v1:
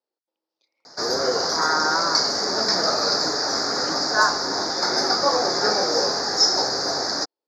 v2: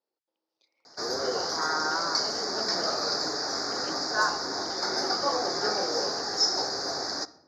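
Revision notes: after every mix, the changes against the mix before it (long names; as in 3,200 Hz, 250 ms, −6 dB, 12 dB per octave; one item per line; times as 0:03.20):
background −9.0 dB
reverb: on, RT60 0.95 s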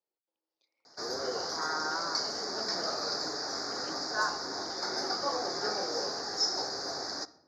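speech −6.5 dB
background −5.0 dB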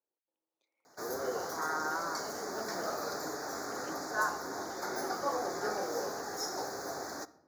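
master: remove low-pass with resonance 4,900 Hz, resonance Q 5.8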